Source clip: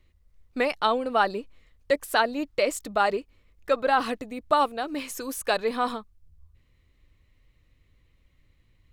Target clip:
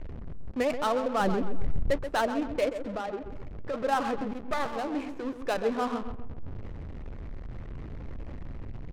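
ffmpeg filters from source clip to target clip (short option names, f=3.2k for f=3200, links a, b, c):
-filter_complex "[0:a]aeval=exprs='val(0)+0.5*0.0376*sgn(val(0))':c=same,asettb=1/sr,asplit=3[a][b][c];[a]atrim=end=1.204[d];[b]atrim=start=1.2:end=1.91,asetpts=PTS-STARTPTS,afade=t=in:d=0.004:c=qsin,afade=t=out:st=0.706:d=0.004:c=qsin,bass=f=250:g=12,treble=f=4k:g=1[e];[c]atrim=start=1.906[f];[d][e]acrossfade=d=0.004:c1=hsin:c2=qsin[g];[g][f]acrossfade=d=0.004:c1=qsin:c2=hsin,flanger=delay=1.1:depth=8.6:regen=73:speed=0.98:shape=triangular,tiltshelf=f=1.1k:g=3.5,asplit=3[h][i][j];[h]afade=t=out:st=2.68:d=0.02[k];[i]acompressor=threshold=-29dB:ratio=6,afade=t=in:st=2.68:d=0.02,afade=t=out:st=3.73:d=0.02[l];[j]afade=t=in:st=3.73:d=0.02[m];[k][l][m]amix=inputs=3:normalize=0,asplit=2[n][o];[o]adelay=131,lowpass=f=3.3k:p=1,volume=-9dB,asplit=2[p][q];[q]adelay=131,lowpass=f=3.3k:p=1,volume=0.46,asplit=2[r][s];[s]adelay=131,lowpass=f=3.3k:p=1,volume=0.46,asplit=2[t][u];[u]adelay=131,lowpass=f=3.3k:p=1,volume=0.46,asplit=2[v][w];[w]adelay=131,lowpass=f=3.3k:p=1,volume=0.46[x];[n][p][r][t][v][x]amix=inputs=6:normalize=0,adynamicsmooth=sensitivity=6:basefreq=560,asettb=1/sr,asplit=3[y][z][aa];[y]atrim=end=4.334[ab];[z]atrim=start=4.33:end=4.76,asetpts=PTS-STARTPTS,afade=t=in:d=0.004:c=qsin,afade=t=out:st=0.426:d=0.004:c=qsin,aeval=exprs='max(val(0),0)':c=same[ac];[aa]atrim=start=4.756[ad];[ab][ac]acrossfade=d=0.004:c1=hsin:c2=qsin[ae];[ae][ad]acrossfade=d=0.004:c1=qsin:c2=hsin,volume=-2.5dB"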